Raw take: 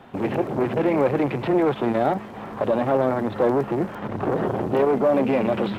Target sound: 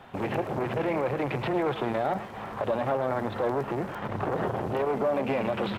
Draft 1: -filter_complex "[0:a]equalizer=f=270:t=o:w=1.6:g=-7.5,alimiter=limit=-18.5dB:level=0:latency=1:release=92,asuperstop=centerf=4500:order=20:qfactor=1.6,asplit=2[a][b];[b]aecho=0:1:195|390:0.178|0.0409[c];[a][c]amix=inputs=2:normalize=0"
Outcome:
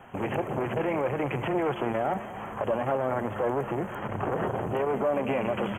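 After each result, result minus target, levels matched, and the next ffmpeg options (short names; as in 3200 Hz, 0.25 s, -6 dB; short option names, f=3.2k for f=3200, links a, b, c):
echo 87 ms late; 4000 Hz band -2.5 dB
-filter_complex "[0:a]equalizer=f=270:t=o:w=1.6:g=-7.5,alimiter=limit=-18.5dB:level=0:latency=1:release=92,asuperstop=centerf=4500:order=20:qfactor=1.6,asplit=2[a][b];[b]aecho=0:1:108|216:0.178|0.0409[c];[a][c]amix=inputs=2:normalize=0"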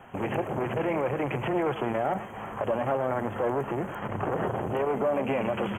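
4000 Hz band -2.5 dB
-filter_complex "[0:a]equalizer=f=270:t=o:w=1.6:g=-7.5,alimiter=limit=-18.5dB:level=0:latency=1:release=92,asplit=2[a][b];[b]aecho=0:1:108|216:0.178|0.0409[c];[a][c]amix=inputs=2:normalize=0"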